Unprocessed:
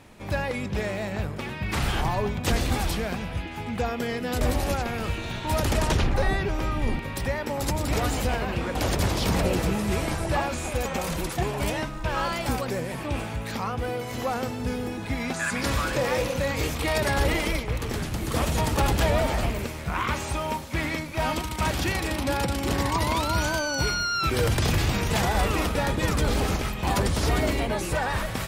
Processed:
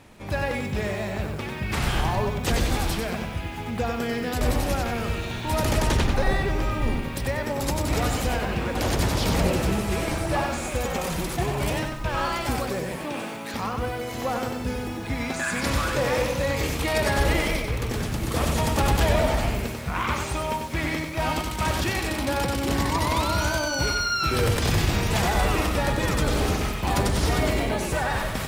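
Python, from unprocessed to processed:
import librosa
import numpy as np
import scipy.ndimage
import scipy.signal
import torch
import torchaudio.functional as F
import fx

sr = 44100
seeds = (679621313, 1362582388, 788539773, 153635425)

y = fx.highpass(x, sr, hz=170.0, slope=24, at=(12.97, 13.54))
y = fx.echo_crushed(y, sr, ms=94, feedback_pct=35, bits=8, wet_db=-5.0)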